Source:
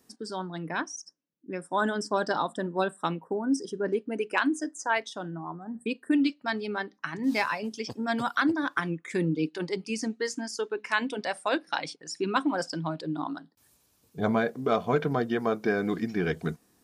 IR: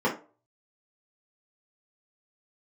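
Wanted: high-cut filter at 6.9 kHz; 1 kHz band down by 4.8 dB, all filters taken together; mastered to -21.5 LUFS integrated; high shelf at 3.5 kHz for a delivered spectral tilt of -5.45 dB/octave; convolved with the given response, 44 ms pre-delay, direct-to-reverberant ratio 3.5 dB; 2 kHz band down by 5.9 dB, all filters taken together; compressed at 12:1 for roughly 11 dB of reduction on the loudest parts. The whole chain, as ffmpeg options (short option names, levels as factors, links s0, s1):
-filter_complex "[0:a]lowpass=6900,equalizer=f=1000:t=o:g=-4.5,equalizer=f=2000:t=o:g=-5,highshelf=f=3500:g=-4.5,acompressor=threshold=0.0251:ratio=12,asplit=2[s0][s1];[1:a]atrim=start_sample=2205,adelay=44[s2];[s1][s2]afir=irnorm=-1:irlink=0,volume=0.141[s3];[s0][s3]amix=inputs=2:normalize=0,volume=4.47"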